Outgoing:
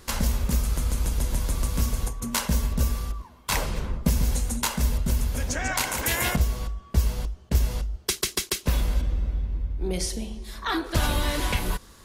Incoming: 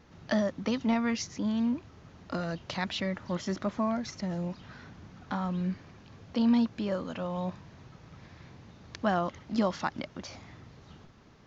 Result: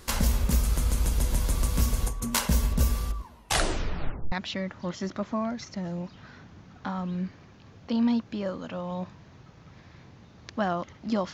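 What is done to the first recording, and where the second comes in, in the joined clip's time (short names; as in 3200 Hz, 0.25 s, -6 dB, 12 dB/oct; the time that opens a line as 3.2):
outgoing
3.31 tape stop 1.01 s
4.32 switch to incoming from 2.78 s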